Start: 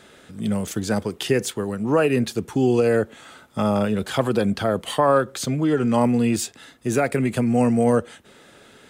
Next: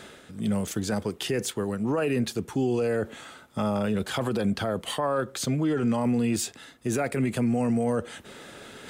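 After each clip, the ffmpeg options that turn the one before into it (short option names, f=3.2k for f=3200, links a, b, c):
-af "areverse,acompressor=mode=upward:threshold=-33dB:ratio=2.5,areverse,alimiter=limit=-15.5dB:level=0:latency=1:release=13,volume=-2.5dB"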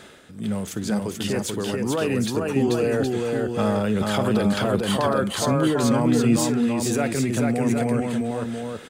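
-filter_complex "[0:a]dynaudnorm=f=400:g=11:m=3.5dB,asplit=2[a][b];[b]aecho=0:1:57|437|768:0.112|0.708|0.501[c];[a][c]amix=inputs=2:normalize=0"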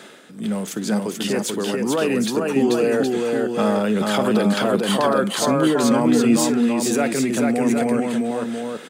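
-af "highpass=f=170:w=0.5412,highpass=f=170:w=1.3066,volume=3.5dB"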